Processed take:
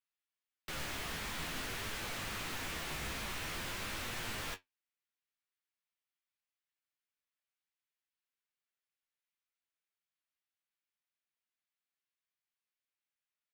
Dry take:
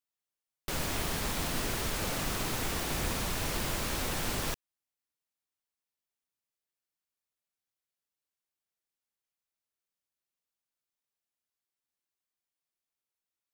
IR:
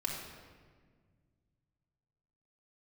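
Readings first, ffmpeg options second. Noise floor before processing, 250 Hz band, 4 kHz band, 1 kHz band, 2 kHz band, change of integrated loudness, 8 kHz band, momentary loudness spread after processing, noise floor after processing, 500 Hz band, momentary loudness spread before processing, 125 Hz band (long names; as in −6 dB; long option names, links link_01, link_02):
below −85 dBFS, −10.0 dB, −5.0 dB, −6.5 dB, −3.0 dB, −7.0 dB, −9.0 dB, 3 LU, below −85 dBFS, −9.5 dB, 3 LU, −10.0 dB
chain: -filter_complex "[0:a]flanger=delay=8.2:depth=6.7:regen=58:speed=0.48:shape=triangular,acrossover=split=110|1300|3500[link_01][link_02][link_03][link_04];[link_03]aeval=exprs='0.0168*sin(PI/2*2.82*val(0)/0.0168)':channel_layout=same[link_05];[link_01][link_02][link_05][link_04]amix=inputs=4:normalize=0,asplit=2[link_06][link_07];[link_07]adelay=19,volume=-11dB[link_08];[link_06][link_08]amix=inputs=2:normalize=0,volume=-6.5dB"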